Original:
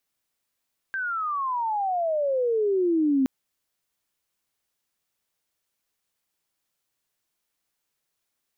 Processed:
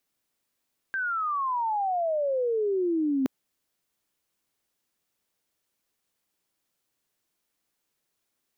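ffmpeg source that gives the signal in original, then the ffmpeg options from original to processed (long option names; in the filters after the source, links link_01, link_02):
-f lavfi -i "aevalsrc='pow(10,(-18+8*(t/2.32-1))/20)*sin(2*PI*1590*2.32/(-31.5*log(2)/12)*(exp(-31.5*log(2)/12*t/2.32)-1))':duration=2.32:sample_rate=44100"
-af "equalizer=frequency=290:width_type=o:width=1.8:gain=5,areverse,acompressor=threshold=-25dB:ratio=6,areverse"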